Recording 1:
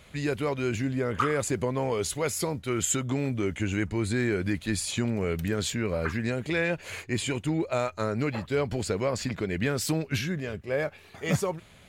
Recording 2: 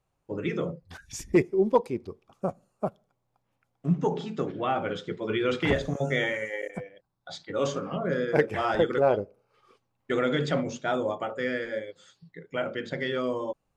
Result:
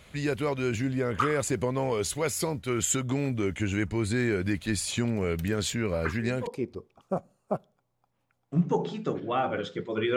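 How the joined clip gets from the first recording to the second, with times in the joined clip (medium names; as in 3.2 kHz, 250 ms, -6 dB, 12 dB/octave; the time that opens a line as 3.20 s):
recording 1
6.06 s: add recording 2 from 1.38 s 0.41 s -16.5 dB
6.47 s: go over to recording 2 from 1.79 s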